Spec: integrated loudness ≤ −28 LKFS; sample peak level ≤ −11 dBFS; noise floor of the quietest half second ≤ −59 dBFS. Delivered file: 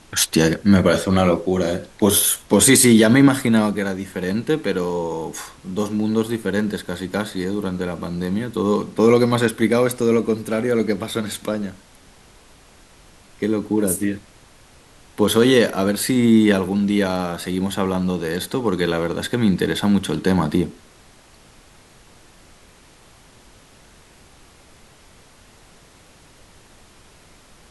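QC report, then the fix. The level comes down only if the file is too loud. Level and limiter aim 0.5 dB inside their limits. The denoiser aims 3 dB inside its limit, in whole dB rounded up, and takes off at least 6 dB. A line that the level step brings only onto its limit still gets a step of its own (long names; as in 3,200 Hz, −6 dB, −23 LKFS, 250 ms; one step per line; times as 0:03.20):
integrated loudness −19.0 LKFS: out of spec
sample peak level −3.5 dBFS: out of spec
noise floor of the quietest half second −49 dBFS: out of spec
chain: broadband denoise 6 dB, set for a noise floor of −49 dBFS
level −9.5 dB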